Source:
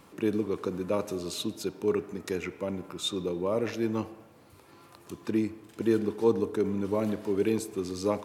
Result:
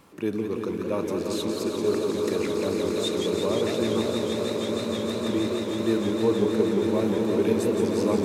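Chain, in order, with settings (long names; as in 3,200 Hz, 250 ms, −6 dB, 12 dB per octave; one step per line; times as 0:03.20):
echo that builds up and dies away 157 ms, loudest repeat 8, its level −10 dB
feedback echo with a swinging delay time 175 ms, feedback 79%, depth 167 cents, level −6 dB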